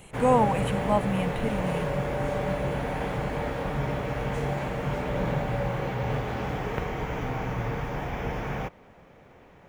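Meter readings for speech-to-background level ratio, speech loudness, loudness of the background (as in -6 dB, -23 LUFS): 3.0 dB, -27.0 LUFS, -30.0 LUFS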